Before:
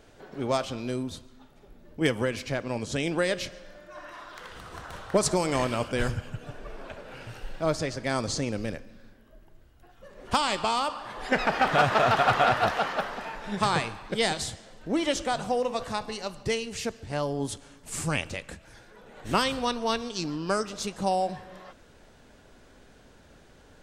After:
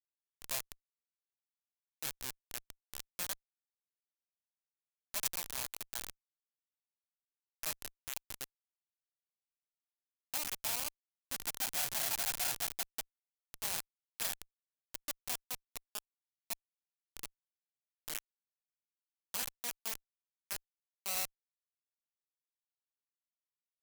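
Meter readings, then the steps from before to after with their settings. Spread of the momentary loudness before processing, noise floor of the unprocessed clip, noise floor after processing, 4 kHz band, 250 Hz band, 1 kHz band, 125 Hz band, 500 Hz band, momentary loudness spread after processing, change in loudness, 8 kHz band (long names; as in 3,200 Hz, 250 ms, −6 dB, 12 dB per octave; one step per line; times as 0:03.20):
19 LU, −55 dBFS, below −85 dBFS, −10.5 dB, −29.0 dB, −23.0 dB, −27.0 dB, −27.0 dB, 15 LU, −10.5 dB, −3.0 dB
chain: lower of the sound and its delayed copy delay 1.2 ms
comparator with hysteresis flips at −23.5 dBFS
first-order pre-emphasis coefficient 0.97
level +7.5 dB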